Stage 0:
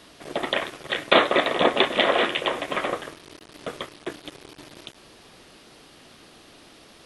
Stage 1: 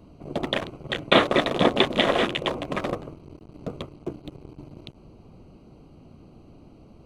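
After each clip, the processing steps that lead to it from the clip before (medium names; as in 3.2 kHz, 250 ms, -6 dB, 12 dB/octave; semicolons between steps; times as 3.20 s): local Wiener filter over 25 samples; tone controls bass +13 dB, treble +5 dB; trim -1.5 dB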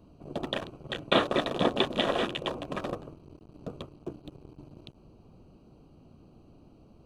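band-stop 2.1 kHz, Q 5.3; trim -6 dB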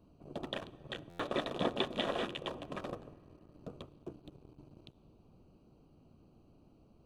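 on a send at -21 dB: reverberation RT60 3.6 s, pre-delay 5 ms; on the sum: buffer glitch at 1.09 s, samples 512, times 8; trim -7.5 dB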